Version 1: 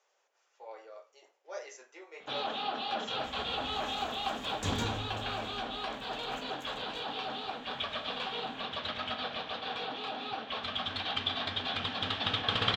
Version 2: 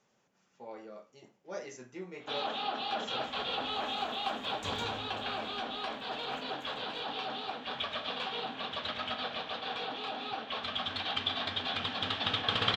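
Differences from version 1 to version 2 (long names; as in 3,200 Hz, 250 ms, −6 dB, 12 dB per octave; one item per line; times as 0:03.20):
speech: remove inverse Chebyshev high-pass filter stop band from 180 Hz, stop band 50 dB
second sound −7.5 dB
master: add low-shelf EQ 74 Hz −7 dB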